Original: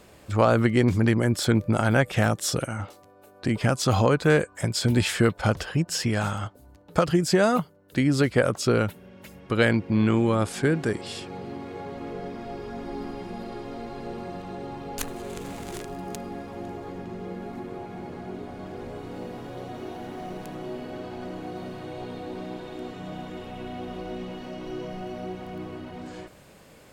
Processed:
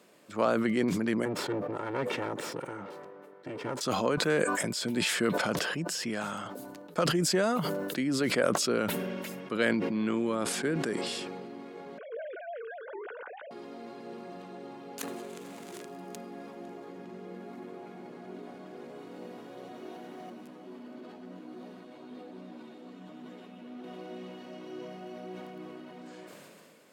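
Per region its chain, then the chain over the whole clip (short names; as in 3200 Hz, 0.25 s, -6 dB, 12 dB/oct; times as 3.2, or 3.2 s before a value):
1.25–3.81 minimum comb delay 2.2 ms + LPF 1000 Hz 6 dB/oct
11.98–13.51 sine-wave speech + bell 1500 Hz +14.5 dB 0.23 oct
20.3–23.84 bell 240 Hz +10 dB 0.6 oct + tube stage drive 27 dB, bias 0.55 + ensemble effect
whole clip: HPF 180 Hz 24 dB/oct; notch 800 Hz, Q 12; sustainer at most 22 dB/s; gain -7.5 dB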